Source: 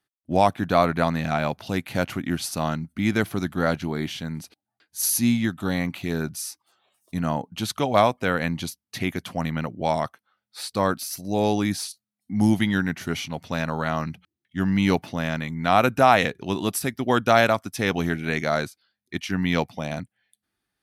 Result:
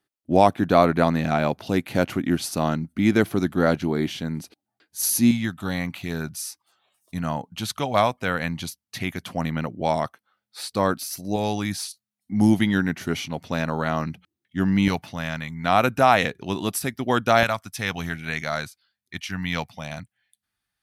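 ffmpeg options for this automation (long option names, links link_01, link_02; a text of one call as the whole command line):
ffmpeg -i in.wav -af "asetnsamples=nb_out_samples=441:pad=0,asendcmd='5.31 equalizer g -4.5;9.22 equalizer g 1.5;11.36 equalizer g -6;12.32 equalizer g 3;14.88 equalizer g -8.5;15.64 equalizer g -1.5;17.43 equalizer g -12',equalizer=frequency=350:width_type=o:width=1.6:gain=6" out.wav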